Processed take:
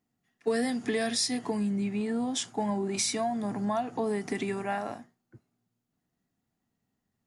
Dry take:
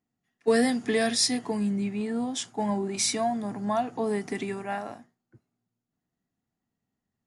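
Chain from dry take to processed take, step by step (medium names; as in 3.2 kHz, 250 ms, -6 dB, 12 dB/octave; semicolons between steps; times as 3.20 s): compression 3:1, threshold -31 dBFS, peak gain reduction 10 dB; trim +3 dB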